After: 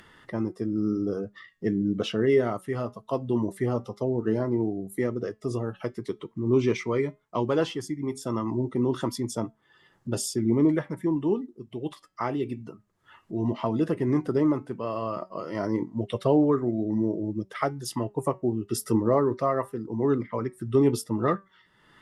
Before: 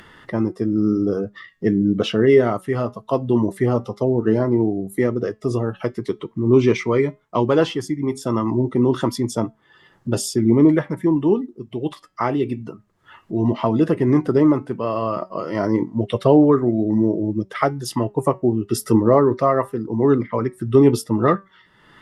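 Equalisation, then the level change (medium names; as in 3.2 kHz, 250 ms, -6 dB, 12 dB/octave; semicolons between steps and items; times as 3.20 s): peaking EQ 9.1 kHz +4 dB 1.6 oct; -8.0 dB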